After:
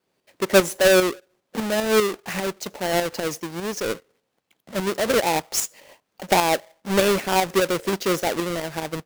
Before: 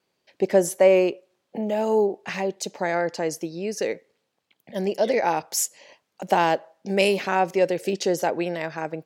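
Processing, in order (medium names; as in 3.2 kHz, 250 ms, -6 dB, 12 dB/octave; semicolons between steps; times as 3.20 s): square wave that keeps the level; tremolo saw up 5 Hz, depth 55%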